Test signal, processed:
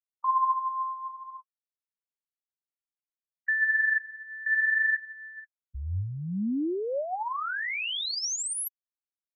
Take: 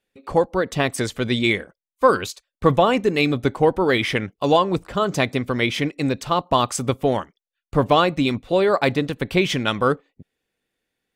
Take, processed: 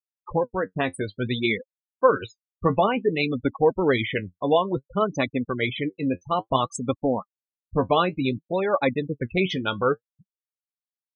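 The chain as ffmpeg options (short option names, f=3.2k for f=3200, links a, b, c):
-af "afftfilt=real='re*gte(hypot(re,im),0.1)':imag='im*gte(hypot(re,im),0.1)':win_size=1024:overlap=0.75,flanger=delay=3.5:depth=7.9:regen=44:speed=0.57:shape=sinusoidal"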